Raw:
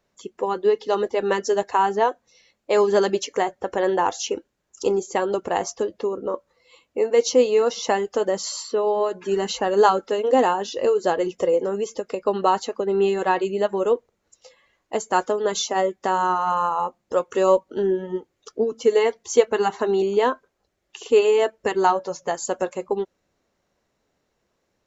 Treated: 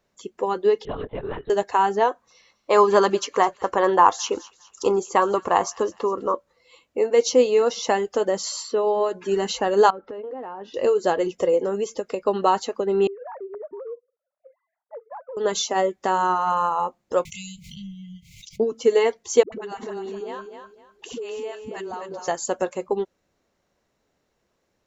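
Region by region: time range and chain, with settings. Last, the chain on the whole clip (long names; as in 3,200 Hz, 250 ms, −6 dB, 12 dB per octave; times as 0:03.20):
0:00.85–0:01.50: high-pass filter 220 Hz + downward compressor 2 to 1, threshold −33 dBFS + linear-prediction vocoder at 8 kHz whisper
0:02.10–0:06.34: parametric band 1,100 Hz +13 dB 0.55 octaves + delay with a high-pass on its return 205 ms, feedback 44%, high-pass 2,400 Hz, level −16 dB
0:09.90–0:10.74: low-pass filter 1,700 Hz + downward compressor 8 to 1, threshold −31 dBFS
0:13.07–0:15.37: three sine waves on the formant tracks + Gaussian smoothing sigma 6.6 samples + downward compressor 5 to 1, threshold −34 dBFS
0:17.25–0:18.60: linear-phase brick-wall band-stop 200–2,000 Hz + background raised ahead of every attack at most 44 dB per second
0:19.43–0:22.28: all-pass dispersion highs, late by 93 ms, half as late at 400 Hz + downward compressor, threshold −31 dBFS + repeating echo 252 ms, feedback 27%, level −7.5 dB
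whole clip: no processing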